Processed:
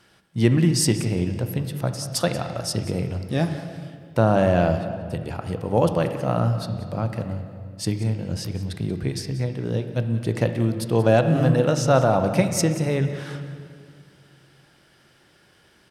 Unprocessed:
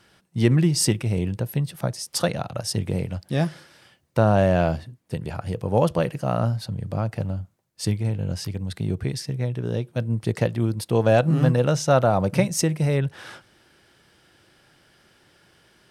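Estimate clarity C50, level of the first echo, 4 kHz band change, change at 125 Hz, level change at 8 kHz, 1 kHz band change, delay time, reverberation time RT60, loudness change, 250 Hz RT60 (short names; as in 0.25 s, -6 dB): 8.0 dB, -16.0 dB, +0.5 dB, 0.0 dB, 0.0 dB, +1.0 dB, 0.184 s, 2.2 s, +0.5 dB, 2.7 s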